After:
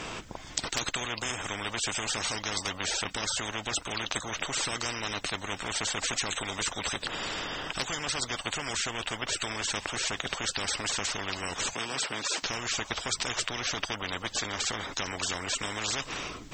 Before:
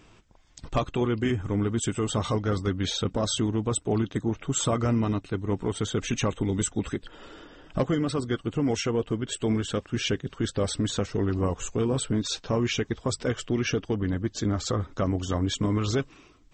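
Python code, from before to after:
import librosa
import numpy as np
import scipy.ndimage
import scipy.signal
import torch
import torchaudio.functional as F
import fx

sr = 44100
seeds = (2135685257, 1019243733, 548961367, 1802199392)

y = fx.highpass(x, sr, hz=250.0, slope=24, at=(11.73, 12.43))
y = fx.spectral_comp(y, sr, ratio=10.0)
y = y * librosa.db_to_amplitude(8.5)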